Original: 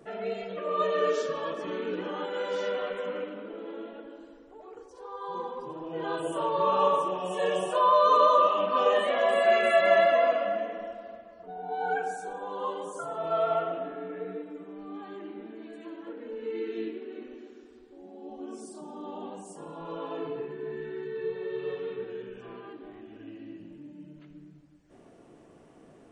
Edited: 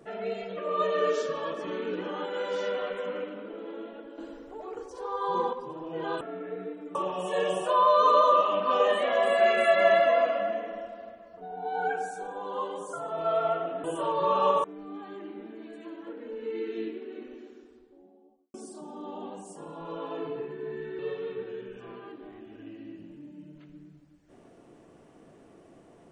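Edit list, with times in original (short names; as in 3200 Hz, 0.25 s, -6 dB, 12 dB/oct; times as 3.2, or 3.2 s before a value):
4.18–5.53 gain +7.5 dB
6.21–7.01 swap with 13.9–14.64
17.4–18.54 studio fade out
20.99–21.6 cut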